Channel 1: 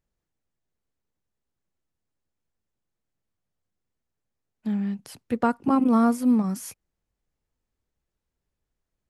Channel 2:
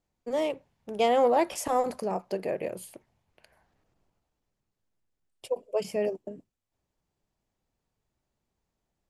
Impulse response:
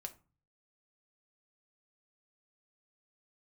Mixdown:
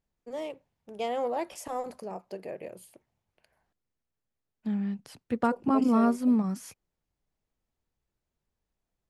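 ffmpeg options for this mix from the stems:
-filter_complex "[0:a]highshelf=f=10k:g=-11.5,volume=-3.5dB[a];[1:a]volume=-8dB,asplit=3[b][c][d];[b]atrim=end=3.73,asetpts=PTS-STARTPTS,afade=t=out:st=3.726:d=0.004:c=hsin[e];[c]atrim=start=3.73:end=5.13,asetpts=PTS-STARTPTS,volume=0[f];[d]atrim=start=5.13,asetpts=PTS-STARTPTS,afade=t=in:d=0.004:c=hsin[g];[e][f][g]concat=n=3:v=0:a=1[h];[a][h]amix=inputs=2:normalize=0"

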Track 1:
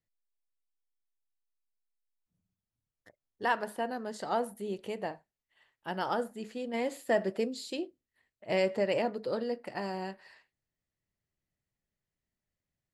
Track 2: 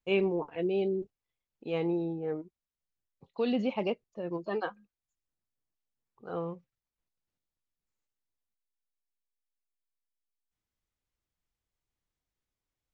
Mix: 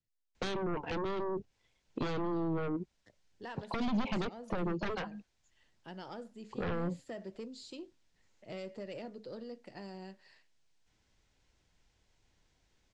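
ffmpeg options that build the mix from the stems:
-filter_complex "[0:a]equalizer=f=1.1k:t=o:w=2.6:g=-9.5,acompressor=threshold=-54dB:ratio=1.5,asoftclip=type=tanh:threshold=-35dB,volume=0.5dB[a];[1:a]bandreject=f=1.2k:w=7.9,acompressor=threshold=-37dB:ratio=4,aeval=exprs='0.0398*sin(PI/2*3.55*val(0)/0.0398)':c=same,adelay=350,volume=2.5dB[b];[a][b]amix=inputs=2:normalize=0,lowpass=f=7.1k:w=0.5412,lowpass=f=7.1k:w=1.3066,acrossover=split=250[c][d];[d]acompressor=threshold=-37dB:ratio=5[e];[c][e]amix=inputs=2:normalize=0"

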